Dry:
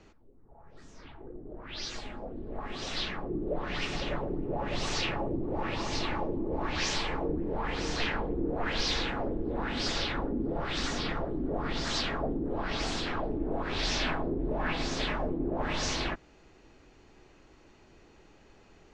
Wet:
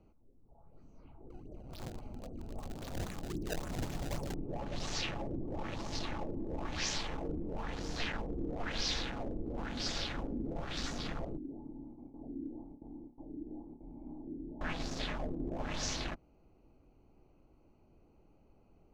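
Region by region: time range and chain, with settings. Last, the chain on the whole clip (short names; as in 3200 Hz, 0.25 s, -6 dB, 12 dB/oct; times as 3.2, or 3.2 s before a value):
1.3–4.34 decimation with a swept rate 23×, swing 160% 3.7 Hz + bell 90 Hz +5 dB 1.7 oct
11.37–14.61 vocal tract filter u + gate with hold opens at -34 dBFS, closes at -43 dBFS + flutter echo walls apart 5 m, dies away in 0.25 s
whole clip: Wiener smoothing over 25 samples; fifteen-band EQ 400 Hz -5 dB, 1000 Hz -3 dB, 6300 Hz +5 dB; gain -4.5 dB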